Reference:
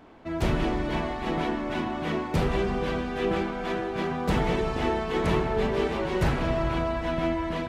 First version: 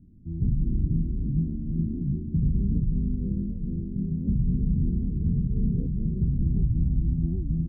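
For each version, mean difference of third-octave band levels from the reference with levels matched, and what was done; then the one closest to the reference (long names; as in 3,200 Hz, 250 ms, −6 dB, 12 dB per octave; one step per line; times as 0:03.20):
21.5 dB: inverse Chebyshev low-pass filter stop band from 840 Hz, stop band 70 dB
brickwall limiter −25.5 dBFS, peak gain reduction 9 dB
single-tap delay 414 ms −4.5 dB
wow of a warped record 78 rpm, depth 250 cents
level +8.5 dB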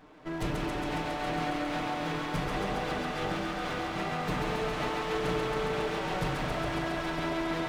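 5.5 dB: lower of the sound and its delayed copy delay 6.6 ms
downward compressor 2.5 to 1, threshold −29 dBFS, peak gain reduction 6 dB
on a send: feedback echo with a high-pass in the loop 137 ms, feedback 85%, high-pass 450 Hz, level −3 dB
on the sum: level −2 dB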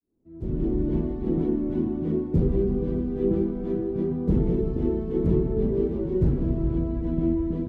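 13.0 dB: fade in at the beginning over 0.87 s
parametric band 2,600 Hz −2.5 dB 0.29 octaves
automatic gain control gain up to 13.5 dB
drawn EQ curve 380 Hz 0 dB, 700 Hz −20 dB, 1,800 Hz −28 dB
level −6.5 dB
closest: second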